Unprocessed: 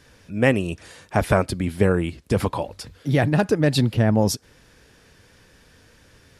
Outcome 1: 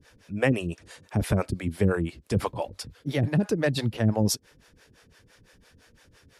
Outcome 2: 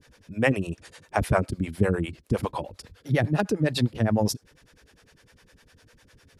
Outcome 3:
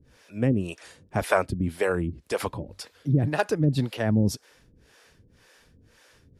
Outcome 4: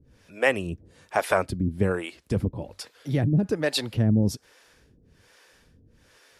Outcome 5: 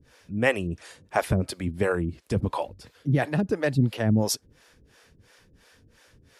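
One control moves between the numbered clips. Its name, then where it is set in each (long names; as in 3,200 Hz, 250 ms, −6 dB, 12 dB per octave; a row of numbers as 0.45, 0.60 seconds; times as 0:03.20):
two-band tremolo in antiphase, speed: 5.9, 9.9, 1.9, 1.2, 2.9 Hertz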